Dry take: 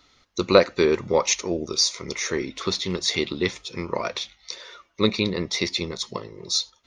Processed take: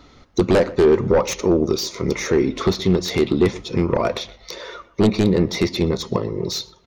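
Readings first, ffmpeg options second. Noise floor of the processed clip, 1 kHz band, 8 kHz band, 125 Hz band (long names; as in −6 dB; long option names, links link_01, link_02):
−52 dBFS, +2.5 dB, −4.0 dB, +10.5 dB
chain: -filter_complex "[0:a]acompressor=threshold=-33dB:ratio=1.5,aeval=exprs='0.299*sin(PI/2*3.16*val(0)/0.299)':channel_layout=same,tiltshelf=frequency=1200:gain=7.5,asplit=2[link_01][link_02];[link_02]adelay=122,lowpass=frequency=2200:poles=1,volume=-19dB,asplit=2[link_03][link_04];[link_04]adelay=122,lowpass=frequency=2200:poles=1,volume=0.34,asplit=2[link_05][link_06];[link_06]adelay=122,lowpass=frequency=2200:poles=1,volume=0.34[link_07];[link_03][link_05][link_07]amix=inputs=3:normalize=0[link_08];[link_01][link_08]amix=inputs=2:normalize=0,volume=-4dB"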